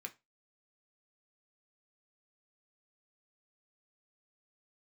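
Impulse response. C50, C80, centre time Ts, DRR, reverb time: 19.0 dB, 27.0 dB, 6 ms, 3.5 dB, 0.25 s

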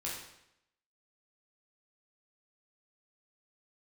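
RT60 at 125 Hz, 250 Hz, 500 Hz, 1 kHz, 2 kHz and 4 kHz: 0.80, 0.80, 0.80, 0.80, 0.80, 0.75 s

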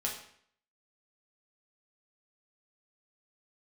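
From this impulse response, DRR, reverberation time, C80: -3.0 dB, 0.60 s, 9.0 dB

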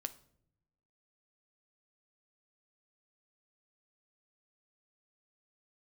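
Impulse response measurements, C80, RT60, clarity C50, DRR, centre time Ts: 21.0 dB, not exponential, 16.5 dB, 10.5 dB, 5 ms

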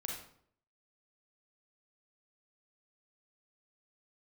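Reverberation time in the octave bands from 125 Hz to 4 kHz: 0.70, 0.70, 0.65, 0.60, 0.50, 0.45 s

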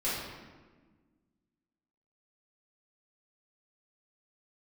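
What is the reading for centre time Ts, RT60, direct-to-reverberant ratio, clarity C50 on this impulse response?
86 ms, 1.4 s, -11.0 dB, -0.5 dB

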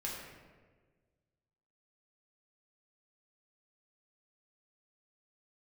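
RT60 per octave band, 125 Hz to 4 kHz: 2.0, 1.7, 1.7, 1.3, 1.2, 0.85 s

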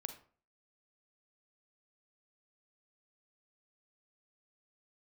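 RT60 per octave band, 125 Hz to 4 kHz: 0.50, 0.45, 0.45, 0.45, 0.35, 0.30 s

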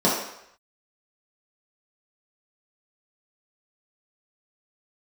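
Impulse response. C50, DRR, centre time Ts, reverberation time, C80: 2.5 dB, -7.5 dB, 50 ms, 0.75 s, 6.0 dB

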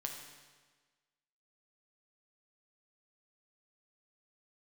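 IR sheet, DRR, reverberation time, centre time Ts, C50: 1.5 dB, 1.4 s, 44 ms, 4.5 dB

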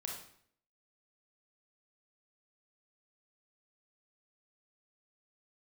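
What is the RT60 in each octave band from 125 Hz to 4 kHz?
0.65, 0.70, 0.65, 0.60, 0.60, 0.55 s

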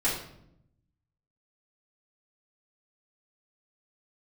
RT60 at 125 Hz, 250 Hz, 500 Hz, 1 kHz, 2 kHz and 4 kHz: 1.4, 1.1, 0.85, 0.65, 0.55, 0.50 s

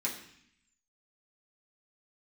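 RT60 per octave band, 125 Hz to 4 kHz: 0.95, 0.95, 0.60, 0.70, 0.90, 0.85 s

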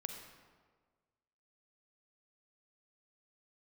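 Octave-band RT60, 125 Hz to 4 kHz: 1.6, 1.6, 1.6, 1.5, 1.2, 0.95 s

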